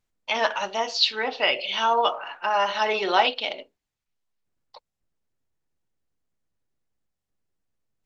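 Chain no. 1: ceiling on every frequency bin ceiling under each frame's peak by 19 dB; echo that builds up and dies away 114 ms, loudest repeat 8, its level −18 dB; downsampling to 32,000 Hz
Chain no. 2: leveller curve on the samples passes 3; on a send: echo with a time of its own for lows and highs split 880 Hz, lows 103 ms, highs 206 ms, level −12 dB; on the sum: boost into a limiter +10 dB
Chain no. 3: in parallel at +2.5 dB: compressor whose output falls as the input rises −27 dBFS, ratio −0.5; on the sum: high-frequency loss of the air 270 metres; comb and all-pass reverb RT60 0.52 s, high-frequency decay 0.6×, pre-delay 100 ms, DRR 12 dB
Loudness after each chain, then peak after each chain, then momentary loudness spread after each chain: −24.5, −8.5, −21.5 LKFS; −3.5, −1.0, −6.5 dBFS; 19, 7, 5 LU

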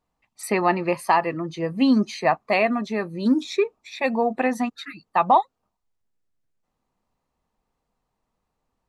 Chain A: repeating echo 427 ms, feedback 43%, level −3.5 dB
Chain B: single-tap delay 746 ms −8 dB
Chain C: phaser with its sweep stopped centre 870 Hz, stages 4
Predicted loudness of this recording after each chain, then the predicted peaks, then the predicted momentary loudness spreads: −21.5, −22.5, −26.0 LKFS; −5.5, −6.0, −6.5 dBFS; 11, 9, 16 LU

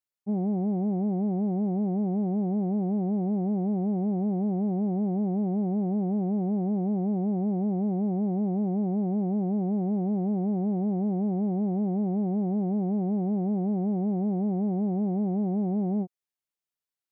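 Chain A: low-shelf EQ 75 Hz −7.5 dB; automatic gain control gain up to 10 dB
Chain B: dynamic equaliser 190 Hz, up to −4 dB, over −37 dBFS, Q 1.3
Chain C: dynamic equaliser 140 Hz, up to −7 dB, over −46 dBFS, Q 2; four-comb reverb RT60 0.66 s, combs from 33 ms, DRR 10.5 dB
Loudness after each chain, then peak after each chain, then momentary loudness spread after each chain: −18.5, −31.0, −29.5 LKFS; −11.0, −23.0, −20.0 dBFS; 0, 0, 0 LU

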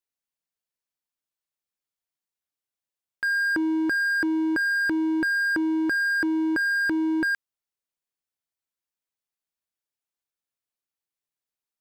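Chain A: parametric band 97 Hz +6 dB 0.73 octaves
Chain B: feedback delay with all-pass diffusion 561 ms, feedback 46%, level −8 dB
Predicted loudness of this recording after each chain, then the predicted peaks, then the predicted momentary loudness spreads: −23.5, −22.0 LKFS; −18.5, −13.5 dBFS; 2, 17 LU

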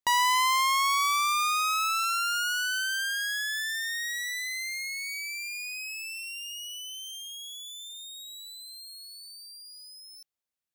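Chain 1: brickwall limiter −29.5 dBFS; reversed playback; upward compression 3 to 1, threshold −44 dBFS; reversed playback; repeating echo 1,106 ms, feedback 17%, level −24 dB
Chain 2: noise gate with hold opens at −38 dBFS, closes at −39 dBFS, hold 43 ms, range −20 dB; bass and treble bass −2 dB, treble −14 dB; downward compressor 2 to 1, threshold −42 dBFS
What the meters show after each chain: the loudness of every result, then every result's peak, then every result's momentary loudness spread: −34.0, −37.5 LKFS; −28.5, −24.5 dBFS; 11, 10 LU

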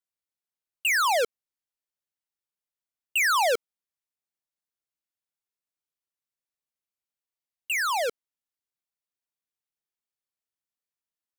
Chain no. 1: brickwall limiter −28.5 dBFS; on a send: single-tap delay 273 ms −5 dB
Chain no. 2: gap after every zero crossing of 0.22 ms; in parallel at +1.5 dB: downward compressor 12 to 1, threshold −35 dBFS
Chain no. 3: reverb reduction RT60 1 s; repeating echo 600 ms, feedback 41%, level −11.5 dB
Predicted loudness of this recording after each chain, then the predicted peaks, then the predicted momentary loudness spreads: −30.0, −26.0, −27.0 LKFS; −24.5, −15.5, −21.0 dBFS; 13, 8, 22 LU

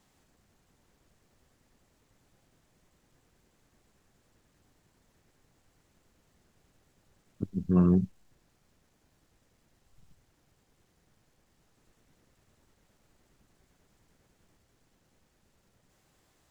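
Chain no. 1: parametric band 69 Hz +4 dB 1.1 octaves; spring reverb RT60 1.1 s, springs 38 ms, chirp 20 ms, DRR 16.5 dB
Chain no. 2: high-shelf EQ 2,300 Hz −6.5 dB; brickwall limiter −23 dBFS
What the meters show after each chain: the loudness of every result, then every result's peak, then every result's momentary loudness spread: −27.0, −34.0 LKFS; −11.5, −23.0 dBFS; 18, 11 LU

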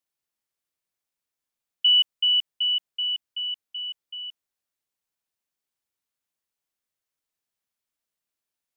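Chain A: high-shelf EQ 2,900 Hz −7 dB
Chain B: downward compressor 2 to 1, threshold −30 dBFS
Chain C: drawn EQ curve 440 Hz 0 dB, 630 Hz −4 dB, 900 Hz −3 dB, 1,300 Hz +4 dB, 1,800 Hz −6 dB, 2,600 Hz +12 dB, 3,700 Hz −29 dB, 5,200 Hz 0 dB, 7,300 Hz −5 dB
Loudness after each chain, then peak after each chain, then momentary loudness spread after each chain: −26.0, −28.5, −25.0 LKFS; −17.5, −17.5, −16.0 dBFS; 17, 10, 17 LU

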